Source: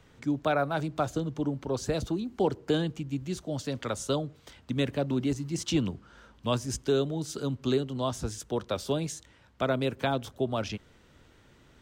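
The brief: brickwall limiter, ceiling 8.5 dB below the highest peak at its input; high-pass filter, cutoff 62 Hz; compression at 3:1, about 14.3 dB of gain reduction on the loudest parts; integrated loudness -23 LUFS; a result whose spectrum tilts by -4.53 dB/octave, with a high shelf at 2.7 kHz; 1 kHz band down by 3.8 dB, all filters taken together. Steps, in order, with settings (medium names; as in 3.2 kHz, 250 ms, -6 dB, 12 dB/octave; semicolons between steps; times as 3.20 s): high-pass 62 Hz; peaking EQ 1 kHz -6.5 dB; treble shelf 2.7 kHz +5.5 dB; compression 3:1, threshold -42 dBFS; trim +21 dB; peak limiter -12 dBFS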